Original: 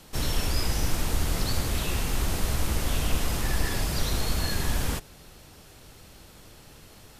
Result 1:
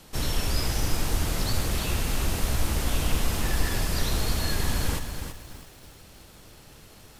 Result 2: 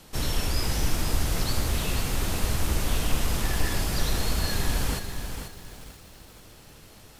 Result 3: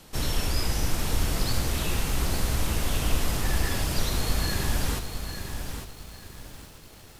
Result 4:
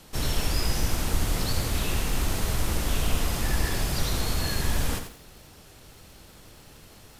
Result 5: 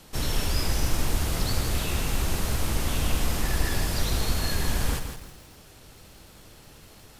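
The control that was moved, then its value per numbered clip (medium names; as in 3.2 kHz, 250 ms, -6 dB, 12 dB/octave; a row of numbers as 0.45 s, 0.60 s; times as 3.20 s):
bit-crushed delay, time: 330 ms, 486 ms, 851 ms, 88 ms, 165 ms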